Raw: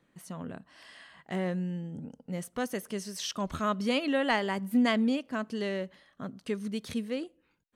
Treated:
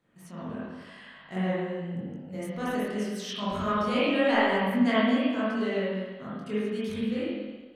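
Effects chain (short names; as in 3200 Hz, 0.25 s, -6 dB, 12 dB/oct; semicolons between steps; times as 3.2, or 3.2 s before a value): spring tank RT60 1.3 s, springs 43/52 ms, chirp 70 ms, DRR -8.5 dB; chorus 0.86 Hz, delay 20 ms, depth 4.6 ms; gain -2 dB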